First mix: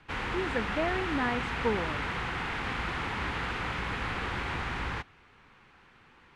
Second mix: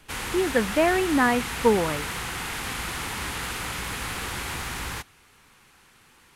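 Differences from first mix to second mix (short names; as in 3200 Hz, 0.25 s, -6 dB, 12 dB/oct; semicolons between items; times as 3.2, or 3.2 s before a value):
speech +10.0 dB; background: remove LPF 2600 Hz 12 dB/oct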